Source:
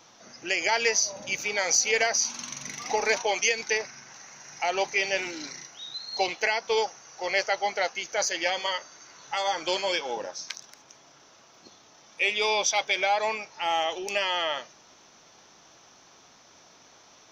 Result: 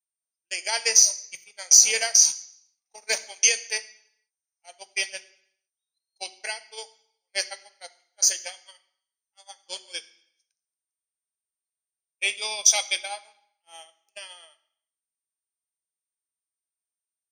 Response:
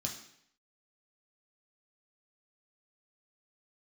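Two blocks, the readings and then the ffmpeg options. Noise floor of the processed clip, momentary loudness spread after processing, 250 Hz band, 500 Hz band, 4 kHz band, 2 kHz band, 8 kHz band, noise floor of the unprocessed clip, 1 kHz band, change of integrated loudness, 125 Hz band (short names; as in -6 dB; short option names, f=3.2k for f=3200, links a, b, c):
under -85 dBFS, 22 LU, under -15 dB, -11.0 dB, +1.5 dB, -4.5 dB, +9.5 dB, -56 dBFS, -12.5 dB, +6.0 dB, n/a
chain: -filter_complex "[0:a]aeval=exprs='val(0)+0.00631*sin(2*PI*8800*n/s)':c=same,aemphasis=mode=production:type=riaa,agate=range=-58dB:threshold=-20dB:ratio=16:detection=peak,asplit=2[a][b];[1:a]atrim=start_sample=2205[c];[b][c]afir=irnorm=-1:irlink=0,volume=-7.5dB[d];[a][d]amix=inputs=2:normalize=0,volume=-4.5dB"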